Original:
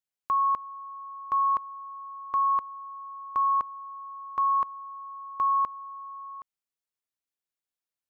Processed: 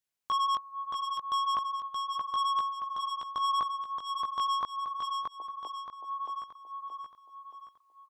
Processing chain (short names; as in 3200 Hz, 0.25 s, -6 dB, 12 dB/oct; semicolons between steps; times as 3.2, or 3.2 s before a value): chorus 0.75 Hz, delay 15.5 ms, depth 5 ms; soft clip -32.5 dBFS, distortion -7 dB; 5.14–5.93 Chebyshev band-pass 290–900 Hz, order 4; on a send: feedback echo 0.625 s, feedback 45%, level -4 dB; on the sum: gain +6.5 dB